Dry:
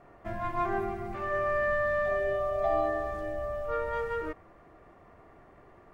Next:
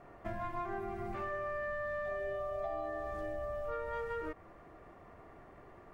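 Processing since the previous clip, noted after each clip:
downward compressor, threshold −36 dBFS, peak gain reduction 12 dB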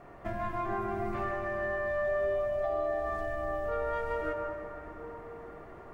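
convolution reverb RT60 4.1 s, pre-delay 78 ms, DRR 2.5 dB
level +4 dB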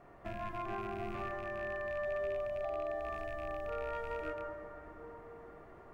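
loose part that buzzes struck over −41 dBFS, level −34 dBFS
level −6.5 dB

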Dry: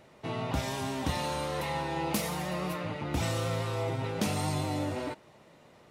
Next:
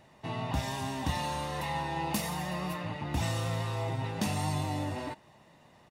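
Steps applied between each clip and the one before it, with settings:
comb filter 1.1 ms, depth 42%
level −2 dB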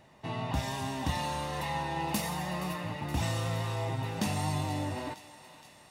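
feedback echo with a high-pass in the loop 471 ms, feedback 70%, high-pass 850 Hz, level −14 dB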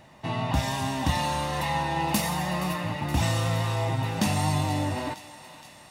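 parametric band 420 Hz −6.5 dB 0.27 octaves
level +6.5 dB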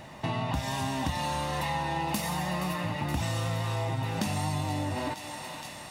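downward compressor 4 to 1, threshold −36 dBFS, peak gain reduction 14.5 dB
level +6.5 dB

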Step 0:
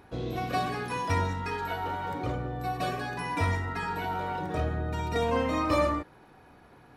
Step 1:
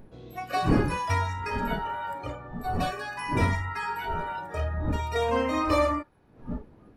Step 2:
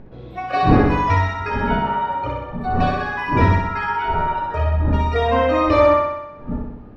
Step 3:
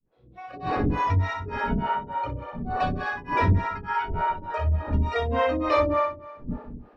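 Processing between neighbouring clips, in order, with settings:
wind on the microphone 300 Hz −35 dBFS; noise reduction from a noise print of the clip's start 14 dB; level +2 dB
high-frequency loss of the air 210 metres; on a send: flutter between parallel walls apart 10.8 metres, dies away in 0.94 s; on the sum: level +8 dB
fade in at the beginning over 1.15 s; two-band tremolo in antiphase 3.4 Hz, depth 100%, crossover 420 Hz; level −2 dB

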